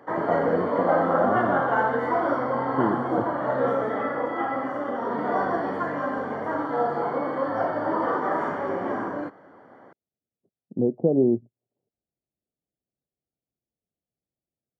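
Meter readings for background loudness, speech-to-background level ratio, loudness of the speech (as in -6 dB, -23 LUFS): -26.0 LUFS, -1.0 dB, -27.0 LUFS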